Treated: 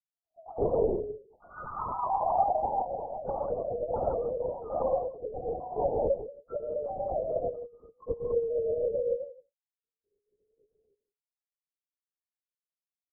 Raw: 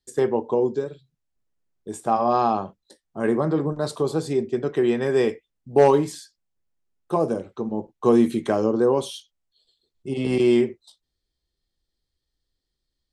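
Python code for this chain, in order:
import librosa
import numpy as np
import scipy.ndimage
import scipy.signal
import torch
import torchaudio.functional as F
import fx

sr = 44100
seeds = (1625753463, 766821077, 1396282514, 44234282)

y = fx.rattle_buzz(x, sr, strikes_db=-36.0, level_db=-17.0)
y = fx.spec_topn(y, sr, count=1)
y = fx.rev_gated(y, sr, seeds[0], gate_ms=300, shape='rising', drr_db=-3.5)
y = fx.echo_pitch(y, sr, ms=130, semitones=4, count=3, db_per_echo=-6.0)
y = fx.brickwall_bandpass(y, sr, low_hz=fx.steps((0.0, 640.0), (0.58, 170.0), (1.91, 440.0)), high_hz=1500.0)
y = y + 10.0 ** (-17.0 / 20.0) * np.pad(y, (int(168 * sr / 1000.0), 0))[:len(y)]
y = fx.lpc_vocoder(y, sr, seeds[1], excitation='whisper', order=8)
y = y * librosa.db_to_amplitude(-3.0)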